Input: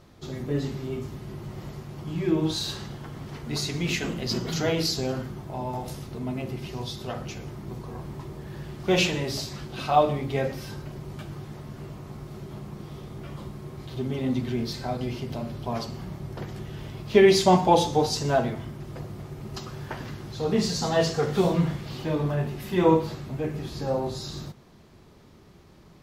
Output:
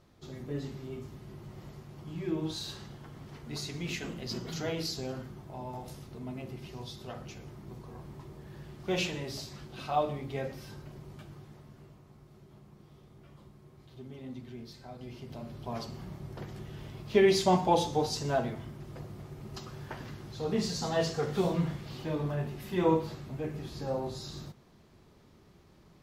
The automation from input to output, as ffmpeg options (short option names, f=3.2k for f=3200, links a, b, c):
-af "volume=1dB,afade=t=out:st=10.98:d=1.09:silence=0.421697,afade=t=in:st=14.92:d=0.94:silence=0.316228"